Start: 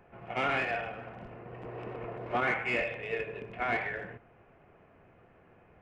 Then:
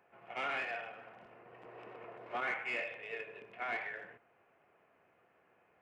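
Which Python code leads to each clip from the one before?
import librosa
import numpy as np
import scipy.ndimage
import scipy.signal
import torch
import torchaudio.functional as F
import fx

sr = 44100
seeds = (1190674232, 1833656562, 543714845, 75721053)

y = fx.highpass(x, sr, hz=680.0, slope=6)
y = y * librosa.db_to_amplitude(-5.5)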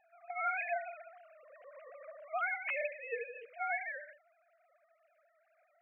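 y = fx.sine_speech(x, sr)
y = y * librosa.db_to_amplitude(2.0)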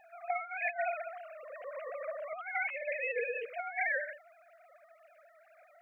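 y = fx.over_compress(x, sr, threshold_db=-41.0, ratio=-0.5)
y = y * librosa.db_to_amplitude(7.0)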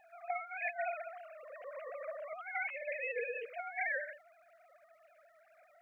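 y = fx.dmg_crackle(x, sr, seeds[0], per_s=450.0, level_db=-68.0)
y = y * librosa.db_to_amplitude(-3.5)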